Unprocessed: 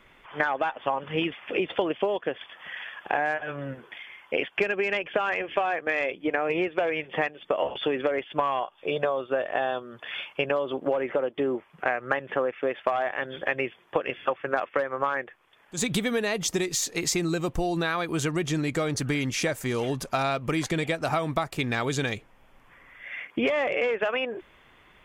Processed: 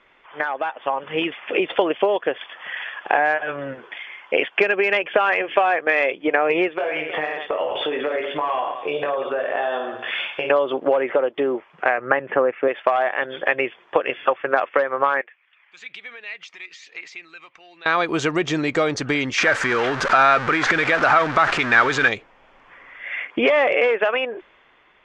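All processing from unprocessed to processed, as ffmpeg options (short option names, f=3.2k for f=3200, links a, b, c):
-filter_complex "[0:a]asettb=1/sr,asplit=3[a][b][c];[a]atrim=end=6.774[d];[b]atrim=start=6.77:end=10.5,asetpts=PTS-STARTPTS,afade=t=in:d=0.004:c=qsin,afade=t=out:st=3.726:d=0.004:c=qsin,aecho=1:1:20|52|103.2|185.1|316.2:0.631|0.398|0.251|0.158|0.1,atrim=end_sample=164493,acompressor=threshold=-29dB:ratio=4:attack=3.2:release=140:knee=1:detection=peak[e];[c]atrim=start=10.496[f];[d][e]acrossfade=d=0.004:c1=hsin:c2=qsin[g];[g][f]acrossfade=d=0.004:c1=qsin:c2=hsin,asettb=1/sr,asplit=3[h][i][j];[h]atrim=end=11.984[k];[i]atrim=start=11.98:end=12.68,asetpts=PTS-STARTPTS,afade=t=in:d=0.004:c=qsin,afade=t=out:st=0.696:d=0.004:c=qsin,lowpass=f=2.7k:w=0.5412,lowpass=f=2.7k:w=1.3066,equalizer=f=140:w=0.49:g=6[l];[j]atrim=start=12.676[m];[k][l]acrossfade=d=0.004:c1=hsin:c2=qsin[n];[n][m]acrossfade=d=0.004:c1=qsin:c2=hsin,asettb=1/sr,asplit=3[o][p][q];[o]atrim=end=15.214[r];[p]atrim=start=15.21:end=17.86,asetpts=PTS-STARTPTS,afade=t=in:d=0.004:c=qsin,afade=t=out:st=2.646:d=0.004:c=qsin,acompressor=threshold=-35dB:ratio=2.5:attack=3.2:release=140:knee=1:detection=peak,aphaser=in_gain=1:out_gain=1:delay=1:decay=0.36:speed=1.1:type=triangular,bandpass=f=2.3k:t=q:w=2.6[s];[q]atrim=start=17.856[t];[r][s]acrossfade=d=0.004:c1=hsin:c2=qsin[u];[u][t]acrossfade=d=0.004:c1=qsin:c2=hsin,asettb=1/sr,asplit=3[v][w][x];[v]atrim=end=19.384[y];[w]atrim=start=19.38:end=22.08,asetpts=PTS-STARTPTS,afade=t=in:d=0.004:c=qsin,afade=t=out:st=2.696:d=0.004:c=qsin,aeval=exprs='val(0)+0.5*0.0398*sgn(val(0))':c=same,acompressor=threshold=-25dB:ratio=6:attack=3.2:release=140:knee=1:detection=peak,equalizer=f=1.5k:w=1.3:g=13[z];[x]atrim=start=22.076[aa];[y][z]acrossfade=d=0.004:c1=hsin:c2=qsin[ab];[ab][aa]acrossfade=d=0.004:c1=qsin:c2=hsin,lowpass=f=6.7k:w=0.5412,lowpass=f=6.7k:w=1.3066,bass=f=250:g=-12,treble=f=4k:g=-7,dynaudnorm=f=190:g=11:m=8.5dB,volume=1dB"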